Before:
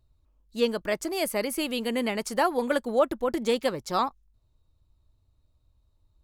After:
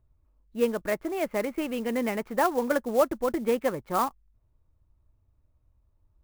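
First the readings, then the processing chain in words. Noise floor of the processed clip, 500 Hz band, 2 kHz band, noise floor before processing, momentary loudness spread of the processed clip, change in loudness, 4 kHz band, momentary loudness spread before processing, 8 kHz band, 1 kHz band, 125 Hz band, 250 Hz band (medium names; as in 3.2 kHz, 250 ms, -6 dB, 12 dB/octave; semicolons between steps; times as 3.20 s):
-69 dBFS, 0.0 dB, -1.5 dB, -69 dBFS, 6 LU, -0.5 dB, -9.5 dB, 4 LU, -4.5 dB, 0.0 dB, 0.0 dB, 0.0 dB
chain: low-pass 2.4 kHz 24 dB/octave; sampling jitter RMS 0.028 ms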